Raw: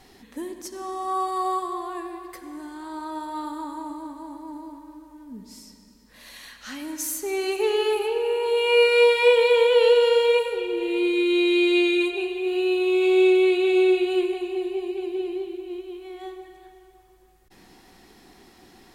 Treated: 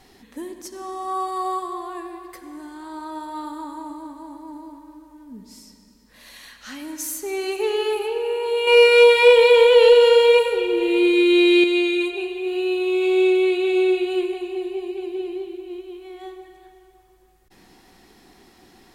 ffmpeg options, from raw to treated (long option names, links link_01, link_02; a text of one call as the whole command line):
ffmpeg -i in.wav -filter_complex "[0:a]asettb=1/sr,asplit=3[link_01][link_02][link_03];[link_01]atrim=end=8.674[link_04];[link_02]atrim=start=8.67:end=11.64,asetpts=PTS-STARTPTS,afade=type=in:duration=0.004:curve=qsin,afade=type=out:start_time=2.966:duration=0.004:curve=qsin,acontrast=45[link_05];[link_03]atrim=start=11.636[link_06];[link_04][link_05]acrossfade=duration=0.004:curve1=hsin:curve2=qsin[link_07];[link_07][link_06]acrossfade=duration=0.004:curve1=qsin:curve2=hsin" out.wav